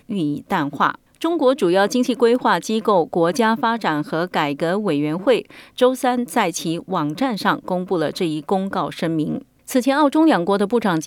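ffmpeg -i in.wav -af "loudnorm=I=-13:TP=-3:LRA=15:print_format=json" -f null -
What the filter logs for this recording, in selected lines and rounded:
"input_i" : "-19.5",
"input_tp" : "-4.2",
"input_lra" : "3.3",
"input_thresh" : "-29.6",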